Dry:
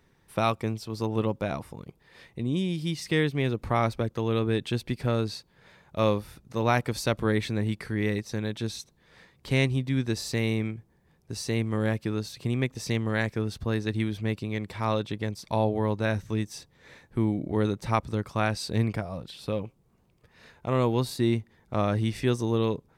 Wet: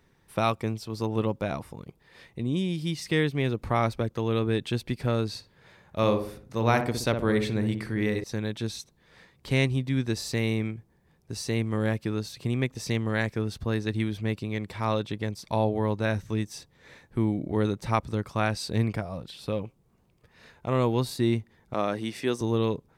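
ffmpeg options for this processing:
ffmpeg -i in.wav -filter_complex "[0:a]asettb=1/sr,asplit=3[link_01][link_02][link_03];[link_01]atrim=end=5.294[link_04];[link_02]atrim=start=5.29:end=8.24,asetpts=PTS-STARTPTS,afade=type=in:duration=0.004:curve=qsin,afade=type=out:start_time=2.946:duration=0.004:curve=qsin,asplit=2[link_05][link_06];[link_06]adelay=61,lowpass=frequency=990:poles=1,volume=-5dB,asplit=2[link_07][link_08];[link_08]adelay=61,lowpass=frequency=990:poles=1,volume=0.5,asplit=2[link_09][link_10];[link_10]adelay=61,lowpass=frequency=990:poles=1,volume=0.5,asplit=2[link_11][link_12];[link_12]adelay=61,lowpass=frequency=990:poles=1,volume=0.5,asplit=2[link_13][link_14];[link_14]adelay=61,lowpass=frequency=990:poles=1,volume=0.5,asplit=2[link_15][link_16];[link_16]adelay=61,lowpass=frequency=990:poles=1,volume=0.5[link_17];[link_05][link_07][link_09][link_11][link_13][link_15][link_17]amix=inputs=7:normalize=0,atrim=end_sample=130095[link_18];[link_03]atrim=start=8.236[link_19];[link_04][link_18]acrossfade=duration=0.004:curve1=hsin:curve2=qsin[link_20];[link_20][link_19]acrossfade=duration=0.004:curve1=qsin:curve2=hsin,asettb=1/sr,asplit=3[link_21][link_22][link_23];[link_21]atrim=end=21.744[link_24];[link_22]atrim=start=21.74:end=22.41,asetpts=PTS-STARTPTS,afade=type=in:duration=0.004:curve=qsin,afade=type=out:start_time=0.666:duration=0.004:curve=qsin,highpass=240[link_25];[link_23]atrim=start=22.406[link_26];[link_24][link_25]acrossfade=duration=0.004:curve1=hsin:curve2=qsin[link_27];[link_27][link_26]acrossfade=duration=0.004:curve1=qsin:curve2=hsin" out.wav

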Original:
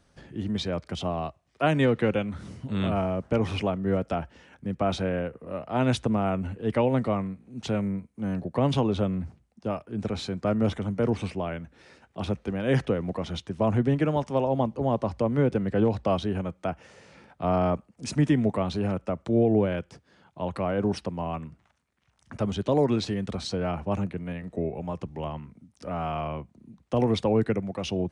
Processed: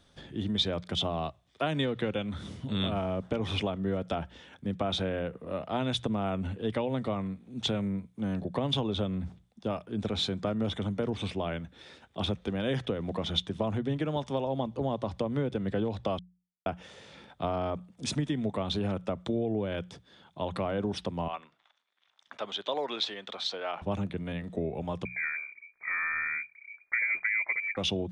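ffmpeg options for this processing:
ffmpeg -i in.wav -filter_complex "[0:a]asettb=1/sr,asplit=3[link_01][link_02][link_03];[link_01]atrim=end=21.284[link_04];[link_02]atrim=start=21.28:end=23.82,asetpts=PTS-STARTPTS,afade=type=in:duration=0.004:curve=qsin,afade=type=out:start_time=2.536:duration=0.004:curve=qsin,highpass=700,lowpass=4800[link_05];[link_03]atrim=start=23.816[link_06];[link_04][link_05]acrossfade=duration=0.004:curve1=hsin:curve2=qsin[link_07];[link_07][link_06]acrossfade=duration=0.004:curve1=qsin:curve2=hsin,asettb=1/sr,asplit=3[link_08][link_09][link_10];[link_08]atrim=end=25.054[link_11];[link_09]atrim=start=25.05:end=27.77,asetpts=PTS-STARTPTS,afade=type=in:duration=0.004:curve=qsin,afade=type=out:start_time=2.716:duration=0.004:curve=qsin,lowpass=frequency=2100:width_type=q:width=0.5098,lowpass=frequency=2100:width_type=q:width=0.6013,lowpass=frequency=2100:width_type=q:width=0.9,lowpass=frequency=2100:width_type=q:width=2.563,afreqshift=-2500[link_12];[link_10]atrim=start=27.766[link_13];[link_11][link_12]acrossfade=duration=0.004:curve1=hsin:curve2=qsin[link_14];[link_14][link_13]acrossfade=duration=0.004:curve1=qsin:curve2=hsin,asplit=3[link_15][link_16][link_17];[link_15]atrim=end=16.19,asetpts=PTS-STARTPTS,afade=type=out:start_time=16.186:duration=0.004:curve=hsin[link_18];[link_16]atrim=start=16.19:end=16.66,asetpts=PTS-STARTPTS,volume=0[link_19];[link_17]atrim=start=16.66,asetpts=PTS-STARTPTS,afade=type=in:duration=0.004:curve=hsin[link_20];[link_18][link_19][link_20]concat=n=3:v=0:a=1,acompressor=threshold=-27dB:ratio=6,equalizer=frequency=3500:width=5.7:gain=14.5,bandreject=frequency=60:width_type=h:width=6,bandreject=frequency=120:width_type=h:width=6,bandreject=frequency=180:width_type=h:width=6" out.wav

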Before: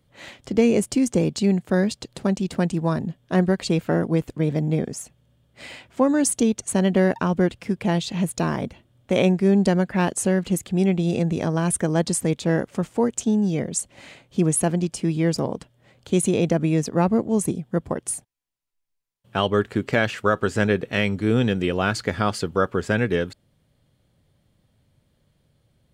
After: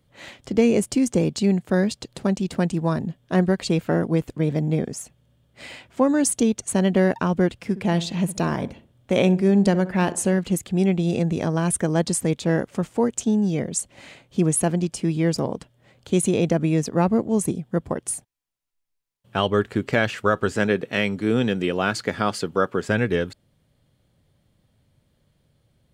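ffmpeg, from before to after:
ffmpeg -i in.wav -filter_complex "[0:a]asettb=1/sr,asplit=3[link_01][link_02][link_03];[link_01]atrim=end=7.584[link_04];[link_02]atrim=start=7.58:end=10.38,asetpts=PTS-STARTPTS,afade=type=in:duration=0.004:curve=qsin,afade=type=out:start_time=2.796:duration=0.004:curve=qsin,asplit=2[link_05][link_06];[link_06]adelay=65,lowpass=frequency=1600:poles=1,volume=-14.5dB,asplit=2[link_07][link_08];[link_08]adelay=65,lowpass=frequency=1600:poles=1,volume=0.38,asplit=2[link_09][link_10];[link_10]adelay=65,lowpass=frequency=1600:poles=1,volume=0.38,asplit=2[link_11][link_12];[link_12]adelay=65,lowpass=frequency=1600:poles=1,volume=0.38[link_13];[link_05][link_07][link_09][link_11][link_13]amix=inputs=5:normalize=0,atrim=end_sample=123480[link_14];[link_03]atrim=start=10.376[link_15];[link_04][link_14]acrossfade=duration=0.004:curve1=hsin:curve2=qsin[link_16];[link_16][link_15]acrossfade=duration=0.004:curve1=qsin:curve2=hsin,asettb=1/sr,asplit=3[link_17][link_18][link_19];[link_17]atrim=end=20.524[link_20];[link_18]atrim=start=20.52:end=22.89,asetpts=PTS-STARTPTS,afade=type=in:duration=0.004:curve=qsin,afade=type=out:start_time=2.366:duration=0.004:curve=qsin,highpass=140[link_21];[link_19]atrim=start=22.886[link_22];[link_20][link_21]acrossfade=duration=0.004:curve1=hsin:curve2=qsin[link_23];[link_23][link_22]acrossfade=duration=0.004:curve1=qsin:curve2=hsin" out.wav

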